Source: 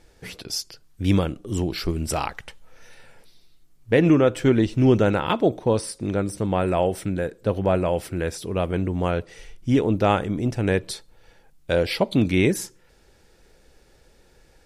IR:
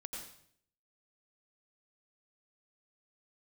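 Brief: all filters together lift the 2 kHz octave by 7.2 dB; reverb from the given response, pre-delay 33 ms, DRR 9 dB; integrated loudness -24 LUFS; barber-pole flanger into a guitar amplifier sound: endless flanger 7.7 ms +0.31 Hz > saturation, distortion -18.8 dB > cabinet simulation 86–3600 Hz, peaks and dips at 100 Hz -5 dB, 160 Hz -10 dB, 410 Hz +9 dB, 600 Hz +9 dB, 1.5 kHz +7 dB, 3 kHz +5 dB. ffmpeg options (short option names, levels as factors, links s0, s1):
-filter_complex "[0:a]equalizer=f=2000:t=o:g=4.5,asplit=2[s0][s1];[1:a]atrim=start_sample=2205,adelay=33[s2];[s1][s2]afir=irnorm=-1:irlink=0,volume=0.447[s3];[s0][s3]amix=inputs=2:normalize=0,asplit=2[s4][s5];[s5]adelay=7.7,afreqshift=0.31[s6];[s4][s6]amix=inputs=2:normalize=1,asoftclip=threshold=0.251,highpass=86,equalizer=f=100:t=q:w=4:g=-5,equalizer=f=160:t=q:w=4:g=-10,equalizer=f=410:t=q:w=4:g=9,equalizer=f=600:t=q:w=4:g=9,equalizer=f=1500:t=q:w=4:g=7,equalizer=f=3000:t=q:w=4:g=5,lowpass=f=3600:w=0.5412,lowpass=f=3600:w=1.3066,volume=0.794"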